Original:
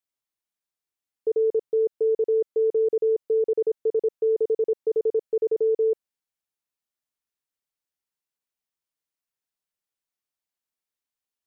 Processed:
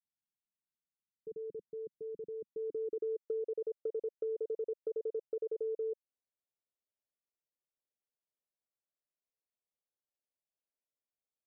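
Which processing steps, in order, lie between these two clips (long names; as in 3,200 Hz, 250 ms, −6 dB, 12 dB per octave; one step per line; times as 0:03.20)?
low-pass filter sweep 200 Hz → 590 Hz, 0:02.38–0:03.50
downward compressor 6 to 1, threshold −27 dBFS, peak gain reduction 13.5 dB
level −8.5 dB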